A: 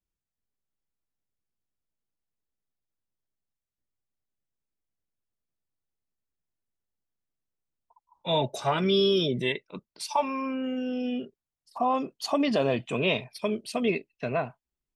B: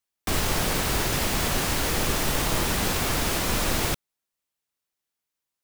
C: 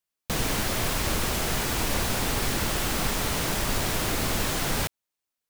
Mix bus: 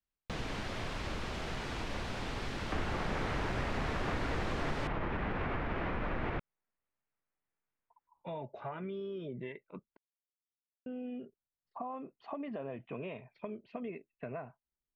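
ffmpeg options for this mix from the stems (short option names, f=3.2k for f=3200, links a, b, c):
-filter_complex "[0:a]acompressor=threshold=-31dB:ratio=4,volume=-6.5dB,asplit=3[a][b][c];[a]atrim=end=9.97,asetpts=PTS-STARTPTS,afade=t=out:st=9.966:d=0.004:c=hsin[d];[b]atrim=start=9.97:end=10.86,asetpts=PTS-STARTPTS,volume=0[e];[c]atrim=start=10.86,asetpts=PTS-STARTPTS,afade=t=in:d=0.004:c=hsin[f];[d][e][f]concat=n=3:v=0:a=1[g];[1:a]adelay=2450,volume=-1.5dB[h];[2:a]lowpass=3.7k,volume=-8.5dB[i];[g][h]amix=inputs=2:normalize=0,lowpass=f=2.2k:w=0.5412,lowpass=f=2.2k:w=1.3066,alimiter=limit=-22.5dB:level=0:latency=1:release=97,volume=0dB[j];[i][j]amix=inputs=2:normalize=0,acompressor=threshold=-38dB:ratio=1.5"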